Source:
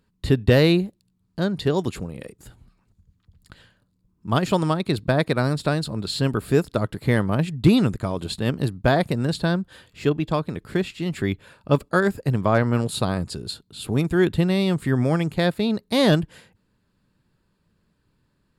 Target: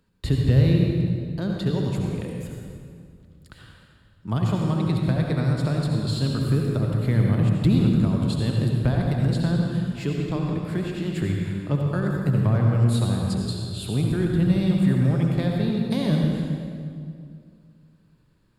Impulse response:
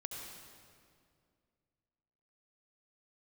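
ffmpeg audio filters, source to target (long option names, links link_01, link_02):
-filter_complex "[0:a]acrossover=split=220[link_01][link_02];[link_02]acompressor=threshold=-34dB:ratio=3[link_03];[link_01][link_03]amix=inputs=2:normalize=0[link_04];[1:a]atrim=start_sample=2205[link_05];[link_04][link_05]afir=irnorm=-1:irlink=0,volume=4dB"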